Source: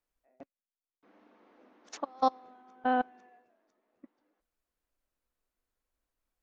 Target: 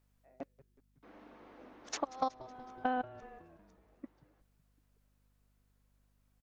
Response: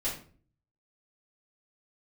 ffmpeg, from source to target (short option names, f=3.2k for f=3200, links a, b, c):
-filter_complex "[0:a]acompressor=threshold=-37dB:ratio=6,asplit=2[a][b];[b]asplit=5[c][d][e][f][g];[c]adelay=185,afreqshift=-140,volume=-19dB[h];[d]adelay=370,afreqshift=-280,volume=-23.7dB[i];[e]adelay=555,afreqshift=-420,volume=-28.5dB[j];[f]adelay=740,afreqshift=-560,volume=-33.2dB[k];[g]adelay=925,afreqshift=-700,volume=-37.9dB[l];[h][i][j][k][l]amix=inputs=5:normalize=0[m];[a][m]amix=inputs=2:normalize=0,aeval=exprs='val(0)+0.000126*(sin(2*PI*50*n/s)+sin(2*PI*2*50*n/s)/2+sin(2*PI*3*50*n/s)/3+sin(2*PI*4*50*n/s)/4+sin(2*PI*5*50*n/s)/5)':c=same,volume=6dB"